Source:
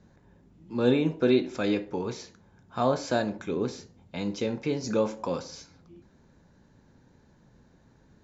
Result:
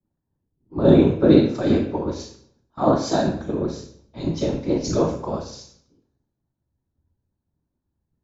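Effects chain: in parallel at -0.5 dB: limiter -21.5 dBFS, peak gain reduction 11 dB; on the sum: whisperiser; reverb RT60 1.1 s, pre-delay 3 ms, DRR 4 dB; three-band expander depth 100%; gain -5.5 dB

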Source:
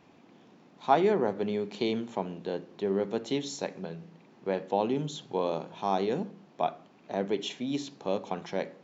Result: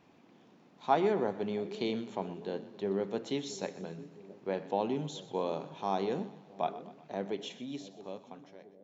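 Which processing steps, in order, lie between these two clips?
ending faded out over 1.98 s; split-band echo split 570 Hz, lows 0.668 s, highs 0.124 s, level -15.5 dB; gain -4 dB

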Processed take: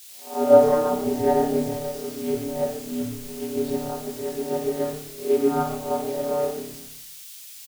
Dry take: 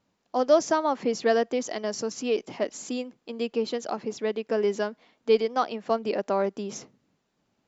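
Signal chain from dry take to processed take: spectral swells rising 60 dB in 0.51 s; bell 620 Hz +7.5 dB 1.1 oct; notches 60/120/180/240/300/360/420/480 Hz; in parallel at -2 dB: compressor, threshold -27 dBFS, peak gain reduction 18.5 dB; on the sum: vocoder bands 16, square 82.1 Hz; requantised 6-bit, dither triangular; frequency-shifting echo 0.13 s, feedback 39%, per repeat -130 Hz, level -9 dB; on a send at -6 dB: reverb RT60 0.65 s, pre-delay 36 ms; on the sum: three-band expander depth 70%; gain -7 dB

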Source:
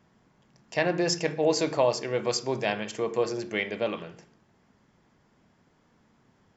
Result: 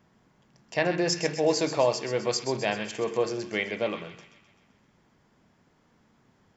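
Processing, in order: thin delay 0.129 s, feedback 57%, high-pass 1700 Hz, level -9 dB

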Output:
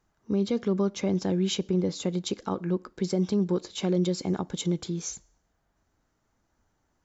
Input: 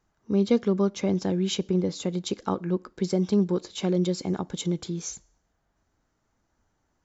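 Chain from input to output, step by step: limiter -17.5 dBFS, peak gain reduction 7 dB

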